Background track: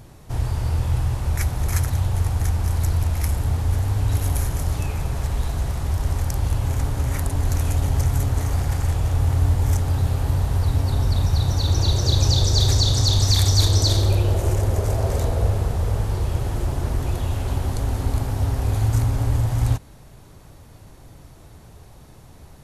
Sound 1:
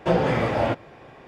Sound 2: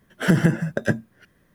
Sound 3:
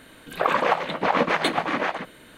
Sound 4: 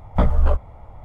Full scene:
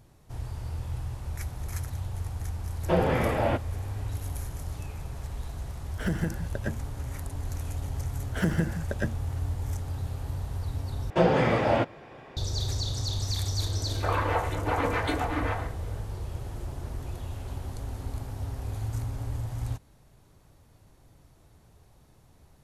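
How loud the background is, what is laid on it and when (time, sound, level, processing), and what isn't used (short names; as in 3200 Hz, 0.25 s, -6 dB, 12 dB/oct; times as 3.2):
background track -12.5 dB
2.83 add 1 -3.5 dB + LPF 4400 Hz
5.78 add 2 -12 dB
8.14 add 2 -9 dB
11.1 replace with 1 -1 dB
13.63 add 3 -13 dB + FDN reverb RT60 0.42 s, low-frequency decay 0.8×, high-frequency decay 0.4×, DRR -4.5 dB
not used: 4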